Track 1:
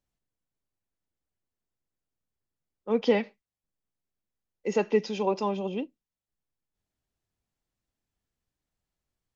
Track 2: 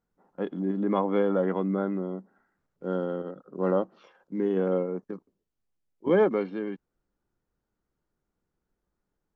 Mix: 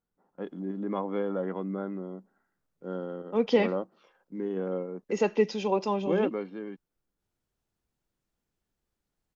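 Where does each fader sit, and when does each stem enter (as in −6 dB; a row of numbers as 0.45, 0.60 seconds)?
0.0, −6.0 decibels; 0.45, 0.00 seconds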